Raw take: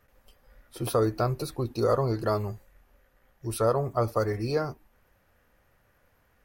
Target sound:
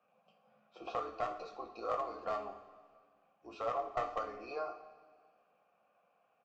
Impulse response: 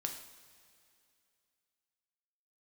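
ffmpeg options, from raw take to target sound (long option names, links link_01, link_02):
-filter_complex "[0:a]acrossover=split=170|910[link_01][link_02][link_03];[link_01]aeval=exprs='val(0)*sin(2*PI*180*n/s)':channel_layout=same[link_04];[link_02]acompressor=threshold=-34dB:ratio=6[link_05];[link_04][link_05][link_03]amix=inputs=3:normalize=0,asplit=3[link_06][link_07][link_08];[link_06]bandpass=frequency=730:width_type=q:width=8,volume=0dB[link_09];[link_07]bandpass=frequency=1090:width_type=q:width=8,volume=-6dB[link_10];[link_08]bandpass=frequency=2440:width_type=q:width=8,volume=-9dB[link_11];[link_09][link_10][link_11]amix=inputs=3:normalize=0,aresample=16000,aeval=exprs='clip(val(0),-1,0.0168)':channel_layout=same,aresample=44100,asplit=2[link_12][link_13];[link_13]adelay=226,lowpass=frequency=1500:poles=1,volume=-23dB,asplit=2[link_14][link_15];[link_15]adelay=226,lowpass=frequency=1500:poles=1,volume=0.49,asplit=2[link_16][link_17];[link_17]adelay=226,lowpass=frequency=1500:poles=1,volume=0.49[link_18];[link_12][link_14][link_16][link_18]amix=inputs=4:normalize=0[link_19];[1:a]atrim=start_sample=2205,asetrate=66150,aresample=44100[link_20];[link_19][link_20]afir=irnorm=-1:irlink=0,volume=9.5dB"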